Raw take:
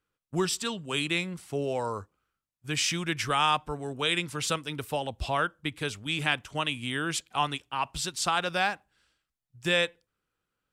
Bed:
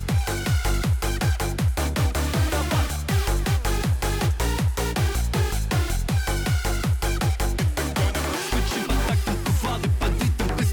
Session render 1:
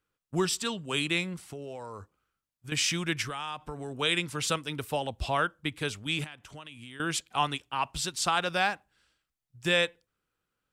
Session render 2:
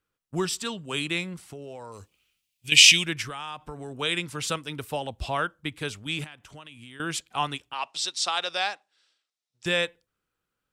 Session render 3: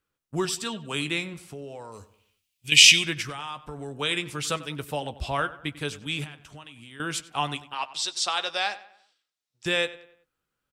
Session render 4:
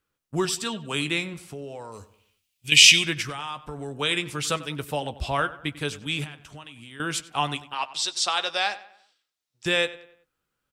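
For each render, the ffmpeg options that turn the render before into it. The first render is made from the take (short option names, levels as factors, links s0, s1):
-filter_complex "[0:a]asettb=1/sr,asplit=3[s0][s1][s2];[s0]atrim=end=1.414[s3];[s1]atrim=start=1.41:end=2.72,asetpts=PTS-STARTPTS,afade=t=in:d=0.004:c=qsin,afade=t=out:st=1.306:d=0.004:c=qsin,acompressor=threshold=0.0141:ratio=6:attack=3.2:release=140:knee=1:detection=peak[s4];[s2]atrim=start=2.716[s5];[s3][s4]acrossfade=d=0.004:c1=hsin:c2=qsin[s6];[s6][s5]acrossfade=d=0.004:c1=qsin:c2=hsin,asettb=1/sr,asplit=3[s7][s8][s9];[s7]atrim=end=3.224[s10];[s8]atrim=start=3.22:end=3.95,asetpts=PTS-STARTPTS,afade=t=in:d=0.004:c=qsin,afade=t=out:st=0.726:d=0.004:c=qsin,acompressor=threshold=0.0224:ratio=5:attack=3.2:release=140:knee=1:detection=peak[s11];[s9]atrim=start=3.946[s12];[s10][s11]acrossfade=d=0.004:c1=hsin:c2=qsin[s13];[s13][s12]acrossfade=d=0.004:c1=qsin:c2=hsin,asettb=1/sr,asplit=3[s14][s15][s16];[s14]atrim=end=6.244[s17];[s15]atrim=start=6.24:end=7,asetpts=PTS-STARTPTS,afade=t=in:d=0.004:c=qsin,afade=t=out:st=0.756:d=0.004:c=qsin,acompressor=threshold=0.00631:ratio=4:attack=3.2:release=140:knee=1:detection=peak[s18];[s16]atrim=start=6.996[s19];[s17][s18]acrossfade=d=0.004:c1=hsin:c2=qsin[s20];[s20][s19]acrossfade=d=0.004:c1=qsin:c2=hsin"
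-filter_complex "[0:a]asettb=1/sr,asplit=3[s0][s1][s2];[s0]atrim=end=1.924[s3];[s1]atrim=start=1.92:end=3.06,asetpts=PTS-STARTPTS,afade=t=in:d=0.004:c=qsin,afade=t=out:st=1.136:d=0.004:c=qsin,highshelf=f=1900:t=q:w=3:g=11[s4];[s2]atrim=start=3.056[s5];[s3][s4]acrossfade=d=0.004:c1=hsin:c2=qsin[s6];[s6][s5]acrossfade=d=0.004:c1=qsin:c2=hsin,asettb=1/sr,asplit=3[s7][s8][s9];[s7]atrim=end=7.734[s10];[s8]atrim=start=7.73:end=9.66,asetpts=PTS-STARTPTS,afade=t=in:d=0.004:c=qsin,afade=t=out:st=1.926:d=0.004:c=qsin,highpass=480,equalizer=f=1000:t=q:w=4:g=-3,equalizer=f=1500:t=q:w=4:g=-4,equalizer=f=3800:t=q:w=4:g=7,equalizer=f=5400:t=q:w=4:g=6,lowpass=f=9200:w=0.5412,lowpass=f=9200:w=1.3066[s11];[s9]atrim=start=9.656[s12];[s10][s11]acrossfade=d=0.004:c1=hsin:c2=qsin[s13];[s13][s12]acrossfade=d=0.004:c1=qsin:c2=hsin"
-filter_complex "[0:a]asplit=2[s0][s1];[s1]adelay=14,volume=0.282[s2];[s0][s2]amix=inputs=2:normalize=0,asplit=2[s3][s4];[s4]adelay=95,lowpass=f=3400:p=1,volume=0.158,asplit=2[s5][s6];[s6]adelay=95,lowpass=f=3400:p=1,volume=0.43,asplit=2[s7][s8];[s8]adelay=95,lowpass=f=3400:p=1,volume=0.43,asplit=2[s9][s10];[s10]adelay=95,lowpass=f=3400:p=1,volume=0.43[s11];[s3][s5][s7][s9][s11]amix=inputs=5:normalize=0"
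-af "volume=1.26,alimiter=limit=0.794:level=0:latency=1"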